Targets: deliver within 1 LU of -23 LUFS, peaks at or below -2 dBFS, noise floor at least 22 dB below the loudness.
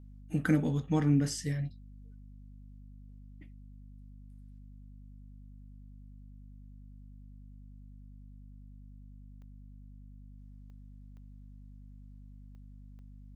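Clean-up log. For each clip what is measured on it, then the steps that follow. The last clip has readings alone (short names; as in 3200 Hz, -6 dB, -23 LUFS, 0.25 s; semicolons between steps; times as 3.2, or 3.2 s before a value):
clicks 5; hum 50 Hz; harmonics up to 250 Hz; hum level -48 dBFS; loudness -30.5 LUFS; peak -15.5 dBFS; loudness target -23.0 LUFS
-> de-click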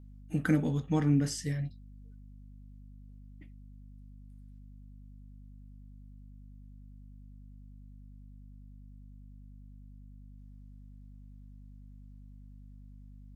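clicks 0; hum 50 Hz; harmonics up to 250 Hz; hum level -48 dBFS
-> notches 50/100/150/200/250 Hz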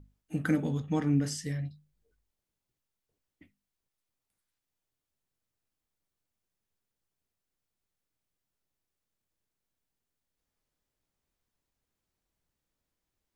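hum none; loudness -31.5 LUFS; peak -15.5 dBFS; loudness target -23.0 LUFS
-> gain +8.5 dB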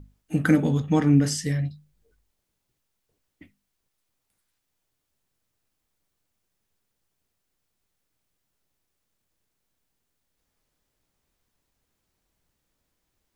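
loudness -23.0 LUFS; peak -7.0 dBFS; noise floor -79 dBFS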